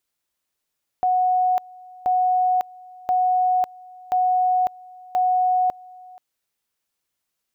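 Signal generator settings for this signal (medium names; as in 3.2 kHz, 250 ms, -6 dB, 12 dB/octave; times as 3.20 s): two-level tone 735 Hz -16 dBFS, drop 24 dB, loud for 0.55 s, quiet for 0.48 s, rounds 5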